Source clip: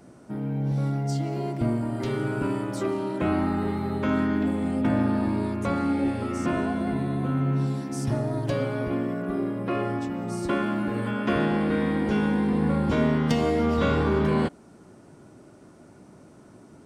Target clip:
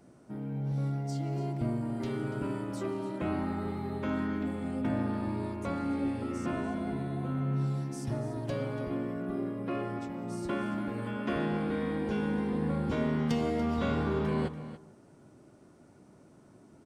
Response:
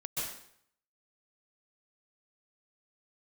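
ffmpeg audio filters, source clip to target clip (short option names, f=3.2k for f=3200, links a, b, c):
-filter_complex "[0:a]aecho=1:1:287:0.211,asplit=2[a][b];[1:a]atrim=start_sample=2205,lowpass=f=1.5k:w=0.5412,lowpass=f=1.5k:w=1.3066[c];[b][c]afir=irnorm=-1:irlink=0,volume=-16dB[d];[a][d]amix=inputs=2:normalize=0,volume=-8dB"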